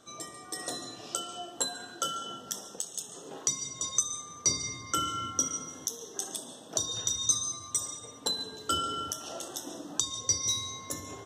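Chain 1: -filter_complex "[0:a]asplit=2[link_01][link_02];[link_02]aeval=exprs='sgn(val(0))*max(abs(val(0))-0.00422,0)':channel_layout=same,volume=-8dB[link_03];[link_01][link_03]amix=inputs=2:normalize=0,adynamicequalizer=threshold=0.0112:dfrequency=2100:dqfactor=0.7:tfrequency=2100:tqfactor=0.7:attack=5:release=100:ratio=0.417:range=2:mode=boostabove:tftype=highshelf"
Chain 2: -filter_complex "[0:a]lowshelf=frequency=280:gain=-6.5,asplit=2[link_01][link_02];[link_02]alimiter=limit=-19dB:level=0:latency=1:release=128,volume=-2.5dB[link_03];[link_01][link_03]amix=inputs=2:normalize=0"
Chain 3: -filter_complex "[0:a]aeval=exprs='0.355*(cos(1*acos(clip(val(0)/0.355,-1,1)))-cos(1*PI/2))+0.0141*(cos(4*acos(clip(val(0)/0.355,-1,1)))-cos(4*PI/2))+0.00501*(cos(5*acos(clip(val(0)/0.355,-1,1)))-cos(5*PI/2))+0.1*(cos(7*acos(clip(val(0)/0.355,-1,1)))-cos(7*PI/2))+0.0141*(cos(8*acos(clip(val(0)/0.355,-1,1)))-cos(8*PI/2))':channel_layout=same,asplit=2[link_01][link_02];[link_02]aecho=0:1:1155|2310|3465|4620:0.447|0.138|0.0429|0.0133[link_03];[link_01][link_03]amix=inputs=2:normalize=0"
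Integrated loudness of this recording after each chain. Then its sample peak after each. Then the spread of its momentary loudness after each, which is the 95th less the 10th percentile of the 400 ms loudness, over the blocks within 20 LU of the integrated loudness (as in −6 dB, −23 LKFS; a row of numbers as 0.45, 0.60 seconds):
−26.0, −28.5, −34.0 LKFS; −4.0, −7.5, −9.0 dBFS; 13, 10, 8 LU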